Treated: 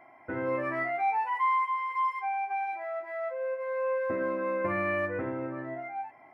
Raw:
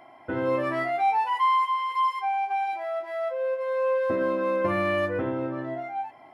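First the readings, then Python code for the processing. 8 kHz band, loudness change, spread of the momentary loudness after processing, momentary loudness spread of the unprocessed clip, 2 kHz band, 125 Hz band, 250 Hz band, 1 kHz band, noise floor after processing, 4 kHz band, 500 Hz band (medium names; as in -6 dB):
no reading, -4.5 dB, 9 LU, 8 LU, -1.5 dB, -5.5 dB, -5.5 dB, -4.5 dB, -55 dBFS, under -10 dB, -5.0 dB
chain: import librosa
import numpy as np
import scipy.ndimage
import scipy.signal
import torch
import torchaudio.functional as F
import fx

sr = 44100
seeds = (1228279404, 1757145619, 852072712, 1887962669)

y = fx.high_shelf_res(x, sr, hz=2700.0, db=-6.5, q=3.0)
y = y * 10.0 ** (-5.5 / 20.0)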